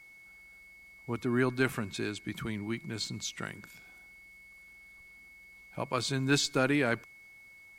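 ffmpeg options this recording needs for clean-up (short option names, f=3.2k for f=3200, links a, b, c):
-af "bandreject=f=2.2k:w=30"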